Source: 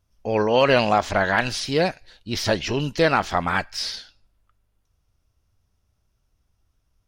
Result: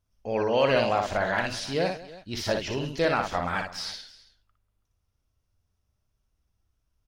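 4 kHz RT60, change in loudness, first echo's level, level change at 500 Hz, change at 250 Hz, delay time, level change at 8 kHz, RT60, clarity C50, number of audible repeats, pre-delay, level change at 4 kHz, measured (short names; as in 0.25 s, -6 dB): none, -5.5 dB, -5.0 dB, -4.5 dB, -6.5 dB, 59 ms, -6.5 dB, none, none, 3, none, -6.5 dB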